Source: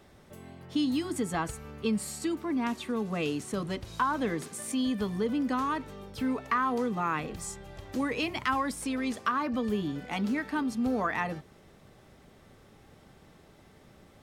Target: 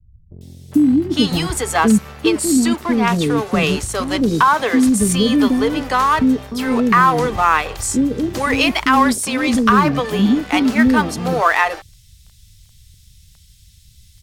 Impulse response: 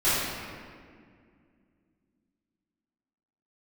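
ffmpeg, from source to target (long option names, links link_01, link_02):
-filter_complex "[0:a]acrossover=split=100|3500[link_01][link_02][link_03];[link_02]aeval=exprs='sgn(val(0))*max(abs(val(0))-0.00422,0)':channel_layout=same[link_04];[link_01][link_04][link_03]amix=inputs=3:normalize=0,acrossover=split=430[link_05][link_06];[link_06]adelay=410[link_07];[link_05][link_07]amix=inputs=2:normalize=0,alimiter=level_in=18.5dB:limit=-1dB:release=50:level=0:latency=1,volume=-1dB"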